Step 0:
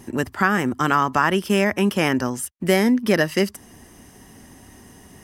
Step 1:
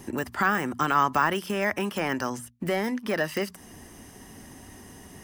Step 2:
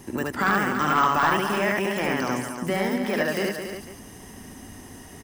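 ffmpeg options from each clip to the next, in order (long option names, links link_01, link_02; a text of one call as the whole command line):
ffmpeg -i in.wav -filter_complex "[0:a]deesser=0.75,bandreject=frequency=60:width_type=h:width=6,bandreject=frequency=120:width_type=h:width=6,bandreject=frequency=180:width_type=h:width=6,bandreject=frequency=240:width_type=h:width=6,acrossover=split=640|6400[link_01][link_02][link_03];[link_01]acompressor=threshold=-29dB:ratio=6[link_04];[link_04][link_02][link_03]amix=inputs=3:normalize=0" out.wav
ffmpeg -i in.wav -filter_complex "[0:a]asplit=2[link_01][link_02];[link_02]aecho=0:1:72.89|215.7:0.891|0.398[link_03];[link_01][link_03]amix=inputs=2:normalize=0,volume=13dB,asoftclip=hard,volume=-13dB,asplit=2[link_04][link_05];[link_05]aecho=0:1:284:0.355[link_06];[link_04][link_06]amix=inputs=2:normalize=0" out.wav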